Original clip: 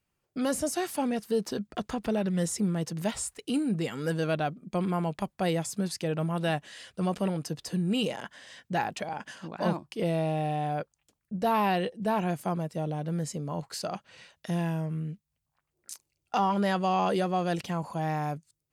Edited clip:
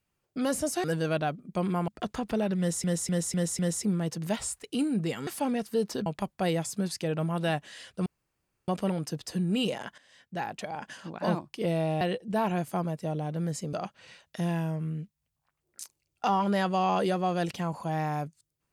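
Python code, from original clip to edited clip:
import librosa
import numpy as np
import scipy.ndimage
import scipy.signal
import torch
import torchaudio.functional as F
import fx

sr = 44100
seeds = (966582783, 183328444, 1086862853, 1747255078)

y = fx.edit(x, sr, fx.swap(start_s=0.84, length_s=0.79, other_s=4.02, other_length_s=1.04),
    fx.repeat(start_s=2.34, length_s=0.25, count=5),
    fx.insert_room_tone(at_s=7.06, length_s=0.62),
    fx.fade_in_from(start_s=8.36, length_s=0.93, floor_db=-14.0),
    fx.cut(start_s=10.39, length_s=1.34),
    fx.cut(start_s=13.45, length_s=0.38), tone=tone)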